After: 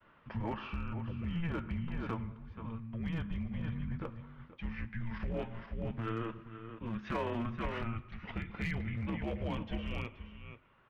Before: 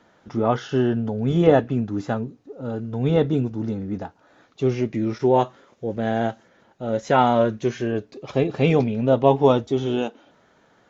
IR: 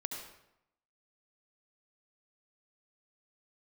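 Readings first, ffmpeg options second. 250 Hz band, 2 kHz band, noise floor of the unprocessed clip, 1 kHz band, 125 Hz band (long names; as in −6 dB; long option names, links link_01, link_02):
−16.0 dB, −10.0 dB, −59 dBFS, −19.5 dB, −13.0 dB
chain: -filter_complex "[0:a]agate=range=-33dB:threshold=-54dB:ratio=3:detection=peak,aecho=1:1:479:0.237,afreqshift=-340,tremolo=f=0.53:d=0.57,alimiter=limit=-15dB:level=0:latency=1:release=10,lowpass=frequency=2300:width=0.5412,lowpass=frequency=2300:width=1.3066,asplit=2[link_01][link_02];[1:a]atrim=start_sample=2205[link_03];[link_02][link_03]afir=irnorm=-1:irlink=0,volume=-15dB[link_04];[link_01][link_04]amix=inputs=2:normalize=0,acompressor=threshold=-26dB:ratio=4,tiltshelf=frequency=1400:gain=-9,aeval=exprs='clip(val(0),-1,0.0237)':channel_layout=same,volume=1dB"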